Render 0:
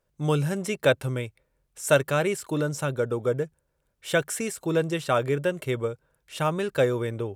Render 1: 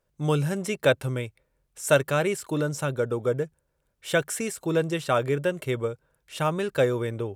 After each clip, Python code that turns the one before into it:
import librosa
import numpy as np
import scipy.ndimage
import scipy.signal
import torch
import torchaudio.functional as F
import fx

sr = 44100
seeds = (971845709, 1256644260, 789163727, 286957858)

y = x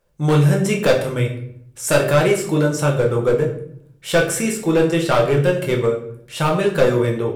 y = np.clip(x, -10.0 ** (-19.5 / 20.0), 10.0 ** (-19.5 / 20.0))
y = fx.room_shoebox(y, sr, seeds[0], volume_m3=110.0, walls='mixed', distance_m=0.8)
y = y * librosa.db_to_amplitude(6.0)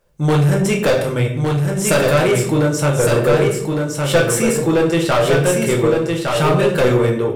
y = 10.0 ** (-13.5 / 20.0) * np.tanh(x / 10.0 ** (-13.5 / 20.0))
y = y + 10.0 ** (-4.0 / 20.0) * np.pad(y, (int(1160 * sr / 1000.0), 0))[:len(y)]
y = y * librosa.db_to_amplitude(4.0)